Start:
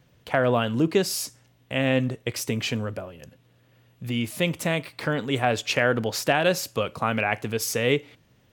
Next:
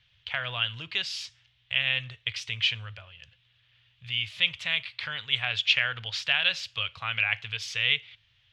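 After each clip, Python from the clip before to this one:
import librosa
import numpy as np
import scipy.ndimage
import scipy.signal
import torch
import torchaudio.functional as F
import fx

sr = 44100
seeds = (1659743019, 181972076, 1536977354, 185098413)

y = fx.curve_eq(x, sr, hz=(100.0, 260.0, 3300.0, 13000.0), db=(0, -29, 14, -28))
y = y * librosa.db_to_amplitude(-5.5)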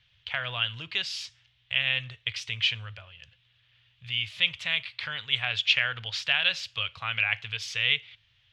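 y = x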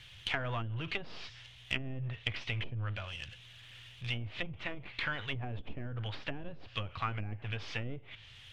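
y = np.where(x < 0.0, 10.0 ** (-7.0 / 20.0) * x, x)
y = fx.power_curve(y, sr, exponent=0.7)
y = fx.env_lowpass_down(y, sr, base_hz=360.0, full_db=-21.5)
y = y * librosa.db_to_amplitude(-2.5)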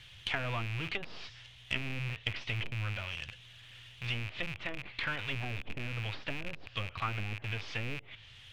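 y = fx.rattle_buzz(x, sr, strikes_db=-48.0, level_db=-29.0)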